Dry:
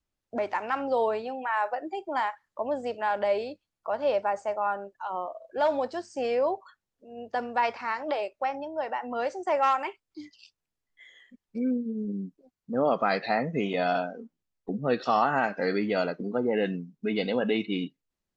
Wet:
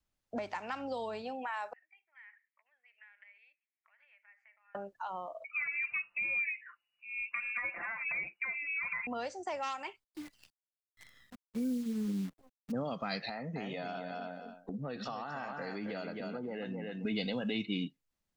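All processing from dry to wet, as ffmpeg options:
ffmpeg -i in.wav -filter_complex "[0:a]asettb=1/sr,asplit=3[link_01][link_02][link_03];[link_01]atrim=end=1.734[link_04];[link_02]atrim=start=1.73:end=4.75,asetpts=PTS-STARTPTS,afade=type=in:duration=0.004:curve=qsin,afade=type=out:start_time=3.016:duration=0.004:curve=qsin,acompressor=threshold=-37dB:ratio=16:attack=3.2:release=140:knee=1:detection=peak,asuperpass=centerf=2100:order=4:qfactor=3.4[link_05];[link_03]atrim=start=4.746[link_06];[link_04][link_05]acrossfade=duration=0.004:curve1=hsin:curve2=qsin[link_07];[link_07][link_06]acrossfade=duration=0.004:curve1=qsin:curve2=hsin,asettb=1/sr,asplit=3[link_08][link_09][link_10];[link_08]atrim=end=5.444[link_11];[link_09]atrim=start=5.44:end=9.07,asetpts=PTS-STARTPTS,afade=type=in:duration=0.004:curve=qsin,afade=type=out:start_time=3.626:duration=0.004:curve=qsin,acompressor=threshold=-33dB:ratio=2.5:attack=3.2:release=140:knee=1:detection=peak,aecho=1:1:5.9:0.86,atrim=end_sample=160083,lowpass=frequency=2500:width_type=q:width=0.5098,lowpass=frequency=2500:width_type=q:width=0.6013,lowpass=frequency=2500:width_type=q:width=0.9,lowpass=frequency=2500:width_type=q:width=2.563,afreqshift=-2900[link_12];[link_10]atrim=start=9.066[link_13];[link_11][link_12]acrossfade=duration=0.004:curve1=hsin:curve2=qsin[link_14];[link_14][link_13]acrossfade=duration=0.004:curve1=qsin:curve2=hsin,asettb=1/sr,asplit=3[link_15][link_16][link_17];[link_15]atrim=end=10.044[link_18];[link_16]atrim=start=10.04:end=12.72,asetpts=PTS-STARTPTS,afade=type=in:duration=0.004:curve=qsin,afade=type=out:start_time=2.676:duration=0.004:curve=qsin,equalizer=frequency=5800:width_type=o:width=2:gain=-9.5,acrusher=bits=9:dc=4:mix=0:aa=0.000001[link_19];[link_17]atrim=start=12.716[link_20];[link_18][link_19]acrossfade=duration=0.004:curve1=hsin:curve2=qsin[link_21];[link_21][link_20]acrossfade=duration=0.004:curve1=qsin:curve2=hsin,asettb=1/sr,asplit=3[link_22][link_23][link_24];[link_22]atrim=end=13.294[link_25];[link_23]atrim=start=13.29:end=17.05,asetpts=PTS-STARTPTS,afade=type=in:duration=0.004:curve=qsin,afade=type=out:start_time=3.756:duration=0.004:curve=qsin,aecho=1:1:267|534:0.422|0.0633,atrim=end_sample=165816,acompressor=threshold=-36dB:ratio=3:attack=3.2:release=140:knee=1:detection=peak[link_26];[link_24]atrim=start=17.046[link_27];[link_25][link_26]acrossfade=duration=0.004:curve1=hsin:curve2=qsin[link_28];[link_28][link_27]acrossfade=duration=0.004:curve1=qsin:curve2=hsin,equalizer=frequency=380:width=2.1:gain=-4.5,acrossover=split=200|3000[link_29][link_30][link_31];[link_30]acompressor=threshold=-37dB:ratio=6[link_32];[link_29][link_32][link_31]amix=inputs=3:normalize=0" out.wav

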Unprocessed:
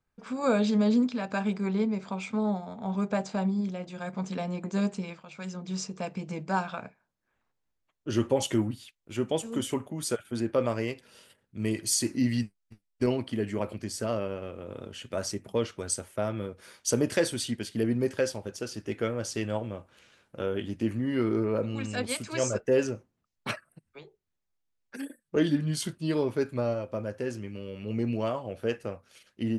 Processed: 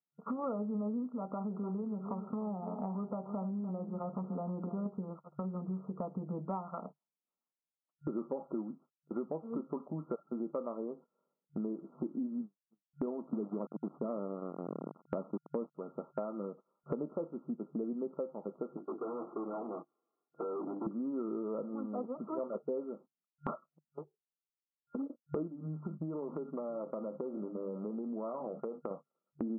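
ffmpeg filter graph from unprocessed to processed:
ffmpeg -i in.wav -filter_complex "[0:a]asettb=1/sr,asplit=3[link_01][link_02][link_03];[link_01]atrim=end=1.284[link_04];[link_02]atrim=start=1.28:end=4.86,asetpts=PTS-STARTPTS,afade=type=in:duration=0.004:curve=qsin,afade=type=out:start_time=3.576:duration=0.004:curve=qsin,acompressor=threshold=-31dB:ratio=2.5:attack=3.2:release=140:knee=1:detection=peak,aecho=1:1:297:0.251,atrim=end_sample=157878[link_05];[link_03]atrim=start=4.856[link_06];[link_04][link_05]acrossfade=duration=0.004:curve1=hsin:curve2=qsin[link_07];[link_07][link_06]acrossfade=duration=0.004:curve1=qsin:curve2=hsin,asettb=1/sr,asplit=3[link_08][link_09][link_10];[link_08]atrim=end=13.334[link_11];[link_09]atrim=start=13.33:end=15.75,asetpts=PTS-STARTPTS,afade=type=in:duration=0.004:curve=qsin,afade=type=out:start_time=2.416:duration=0.004:curve=qsin,aeval=exprs='val(0)*gte(abs(val(0)),0.0188)':channel_layout=same,equalizer=frequency=200:width=0.49:gain=8.5[link_12];[link_10]atrim=start=15.746[link_13];[link_11][link_12]acrossfade=duration=0.004:curve1=hsin:curve2=qsin[link_14];[link_14][link_13]acrossfade=duration=0.004:curve1=qsin:curve2=hsin,asettb=1/sr,asplit=3[link_15][link_16][link_17];[link_15]atrim=end=18.774[link_18];[link_16]atrim=start=18.77:end=20.87,asetpts=PTS-STARTPTS,afade=type=in:duration=0.004:curve=qsin,afade=type=out:start_time=2.096:duration=0.004:curve=qsin,bandreject=frequency=50:width_type=h:width=6,bandreject=frequency=100:width_type=h:width=6,bandreject=frequency=150:width_type=h:width=6,bandreject=frequency=200:width_type=h:width=6,bandreject=frequency=250:width_type=h:width=6,bandreject=frequency=300:width_type=h:width=6,bandreject=frequency=350:width_type=h:width=6,aecho=1:1:2.7:0.77,atrim=end_sample=92610,aeval=exprs='(tanh(112*val(0)+0.5)-tanh(0.5))/112':channel_layout=same[link_19];[link_17]atrim=start=20.866[link_20];[link_18][link_19]acrossfade=duration=0.004:curve1=hsin:curve2=qsin[link_21];[link_21][link_20]acrossfade=duration=0.004:curve1=qsin:curve2=hsin,asettb=1/sr,asplit=3[link_22][link_23][link_24];[link_22]atrim=end=25.474[link_25];[link_23]atrim=start=25.47:end=28.91,asetpts=PTS-STARTPTS,afade=type=in:duration=0.004:curve=qsin,afade=type=out:start_time=3.436:duration=0.004:curve=qsin,bandreject=frequency=50:width_type=h:width=6,bandreject=frequency=100:width_type=h:width=6,bandreject=frequency=150:width_type=h:width=6,bandreject=frequency=200:width_type=h:width=6,bandreject=frequency=250:width_type=h:width=6,acompressor=threshold=-34dB:ratio=10:attack=3.2:release=140:knee=1:detection=peak,aecho=1:1:685:0.0794,atrim=end_sample=151704[link_26];[link_24]atrim=start=28.906[link_27];[link_25][link_26]acrossfade=duration=0.004:curve1=hsin:curve2=qsin[link_28];[link_28][link_27]acrossfade=duration=0.004:curve1=qsin:curve2=hsin,agate=range=-30dB:threshold=-44dB:ratio=16:detection=peak,afftfilt=real='re*between(b*sr/4096,140,1400)':imag='im*between(b*sr/4096,140,1400)':win_size=4096:overlap=0.75,acompressor=threshold=-49dB:ratio=6,volume=12dB" out.wav

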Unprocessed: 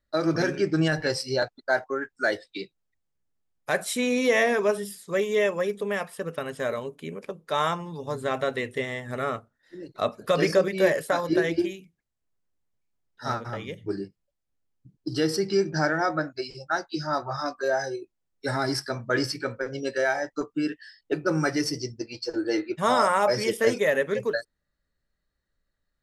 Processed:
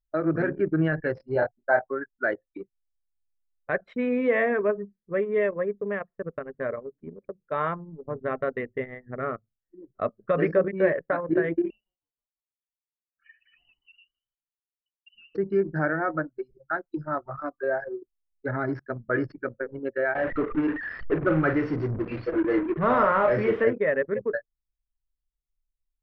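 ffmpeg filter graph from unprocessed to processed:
ffmpeg -i in.wav -filter_complex "[0:a]asettb=1/sr,asplit=3[link_01][link_02][link_03];[link_01]atrim=end=1.334[link_04];[link_02]atrim=start=1.33:end=1.91,asetpts=PTS-STARTPTS,afade=type=in:duration=0.004:curve=qsin,afade=type=out:start_time=0.576:duration=0.004:curve=qsin,equalizer=frequency=810:width=3.3:gain=10.5,asplit=2[link_05][link_06];[link_06]adelay=25,volume=-5.5dB[link_07];[link_05][link_07]amix=inputs=2:normalize=0,atrim=end_sample=25578[link_08];[link_03]atrim=start=1.906[link_09];[link_04][link_08]acrossfade=duration=0.004:curve1=hsin:curve2=qsin[link_10];[link_10][link_09]acrossfade=duration=0.004:curve1=qsin:curve2=hsin,asettb=1/sr,asplit=3[link_11][link_12][link_13];[link_11]atrim=end=11.704[link_14];[link_12]atrim=start=11.7:end=15.35,asetpts=PTS-STARTPTS,afade=type=in:duration=0.004:curve=qsin,afade=type=out:start_time=3.646:duration=0.004:curve=qsin,acompressor=threshold=-36dB:ratio=4:attack=3.2:release=140:knee=1:detection=peak,asplit=7[link_15][link_16][link_17][link_18][link_19][link_20][link_21];[link_16]adelay=159,afreqshift=-130,volume=-11.5dB[link_22];[link_17]adelay=318,afreqshift=-260,volume=-16.7dB[link_23];[link_18]adelay=477,afreqshift=-390,volume=-21.9dB[link_24];[link_19]adelay=636,afreqshift=-520,volume=-27.1dB[link_25];[link_20]adelay=795,afreqshift=-650,volume=-32.3dB[link_26];[link_21]adelay=954,afreqshift=-780,volume=-37.5dB[link_27];[link_15][link_22][link_23][link_24][link_25][link_26][link_27]amix=inputs=7:normalize=0,atrim=end_sample=160965,lowpass=frequency=2600:width_type=q:width=0.5098,lowpass=frequency=2600:width_type=q:width=0.6013,lowpass=frequency=2600:width_type=q:width=0.9,lowpass=frequency=2600:width_type=q:width=2.563,afreqshift=-3100[link_28];[link_13]atrim=start=15.346[link_29];[link_14][link_28]acrossfade=duration=0.004:curve1=hsin:curve2=qsin[link_30];[link_30][link_29]acrossfade=duration=0.004:curve1=qsin:curve2=hsin,asettb=1/sr,asplit=3[link_31][link_32][link_33];[link_31]atrim=end=20.154[link_34];[link_32]atrim=start=20.15:end=23.64,asetpts=PTS-STARTPTS,afade=type=in:duration=0.004:curve=qsin,afade=type=out:start_time=3.486:duration=0.004:curve=qsin,aeval=exprs='val(0)+0.5*0.0501*sgn(val(0))':channel_layout=same,acrusher=bits=3:mode=log:mix=0:aa=0.000001,asplit=2[link_35][link_36];[link_36]adelay=42,volume=-8.5dB[link_37];[link_35][link_37]amix=inputs=2:normalize=0,atrim=end_sample=153909[link_38];[link_33]atrim=start=23.636[link_39];[link_34][link_38]acrossfade=duration=0.004:curve1=hsin:curve2=qsin[link_40];[link_40][link_39]acrossfade=duration=0.004:curve1=qsin:curve2=hsin,equalizer=frequency=850:width=3.1:gain=-7,anlmdn=63.1,lowpass=frequency=2000:width=0.5412,lowpass=frequency=2000:width=1.3066" out.wav

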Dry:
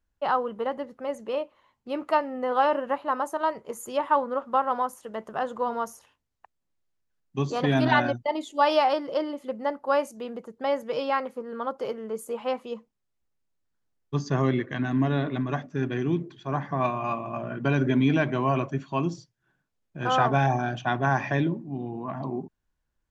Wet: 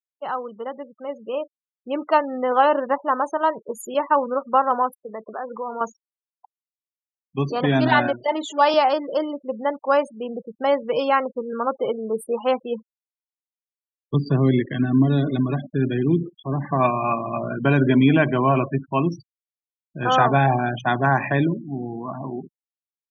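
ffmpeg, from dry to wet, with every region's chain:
ffmpeg -i in.wav -filter_complex "[0:a]asettb=1/sr,asplit=3[link_01][link_02][link_03];[link_01]atrim=end=3.944[link_04];[link_02]atrim=start=3.94:end=4.45,asetpts=PTS-STARTPTS,afade=type=in:duration=0.004:curve=qsin,afade=type=out:start_time=0.506:duration=0.004:curve=qsin,agate=range=-33dB:threshold=-35dB:ratio=3:release=100:detection=peak,equalizer=frequency=940:width=1.2:gain=-2.5[link_05];[link_03]atrim=start=4.446[link_06];[link_04][link_05]acrossfade=duration=0.004:curve1=hsin:curve2=qsin[link_07];[link_07][link_06]acrossfade=duration=0.004:curve1=qsin:curve2=hsin,asettb=1/sr,asplit=3[link_08][link_09][link_10];[link_08]atrim=end=4.964[link_11];[link_09]atrim=start=4.96:end=5.81,asetpts=PTS-STARTPTS,afade=type=in:duration=0.004:curve=qsin,afade=type=out:start_time=0.846:duration=0.004:curve=qsin,highpass=220,acompressor=threshold=-35dB:ratio=2.5:attack=3.2:release=140:knee=1:detection=peak[link_12];[link_10]atrim=start=5.806[link_13];[link_11][link_12]acrossfade=duration=0.004:curve1=hsin:curve2=qsin[link_14];[link_14][link_13]acrossfade=duration=0.004:curve1=qsin:curve2=hsin,asettb=1/sr,asplit=3[link_15][link_16][link_17];[link_15]atrim=end=8.084[link_18];[link_16]atrim=start=8.08:end=8.74,asetpts=PTS-STARTPTS,afade=type=in:duration=0.004:curve=qsin,afade=type=out:start_time=0.656:duration=0.004:curve=qsin,aeval=exprs='val(0)+0.5*0.02*sgn(val(0))':channel_layout=same,highpass=270[link_19];[link_17]atrim=start=8.736[link_20];[link_18][link_19]acrossfade=duration=0.004:curve1=hsin:curve2=qsin[link_21];[link_21][link_20]acrossfade=duration=0.004:curve1=qsin:curve2=hsin,asettb=1/sr,asplit=3[link_22][link_23][link_24];[link_22]atrim=end=14.144[link_25];[link_23]atrim=start=14.14:end=16.65,asetpts=PTS-STARTPTS,afade=type=in:duration=0.004:curve=qsin,afade=type=out:start_time=2.506:duration=0.004:curve=qsin,highshelf=frequency=4500:width_type=q:width=1.5:gain=-6.5,acrusher=bits=8:dc=4:mix=0:aa=0.000001,acrossover=split=430|3000[link_26][link_27][link_28];[link_27]acompressor=threshold=-40dB:ratio=4:attack=3.2:release=140:knee=2.83:detection=peak[link_29];[link_26][link_29][link_28]amix=inputs=3:normalize=0[link_30];[link_24]atrim=start=16.646[link_31];[link_25][link_30]acrossfade=duration=0.004:curve1=hsin:curve2=qsin[link_32];[link_32][link_31]acrossfade=duration=0.004:curve1=qsin:curve2=hsin,highpass=93,afftfilt=real='re*gte(hypot(re,im),0.0158)':imag='im*gte(hypot(re,im),0.0158)':win_size=1024:overlap=0.75,dynaudnorm=framelen=310:gausssize=9:maxgain=11.5dB,volume=-3dB" out.wav

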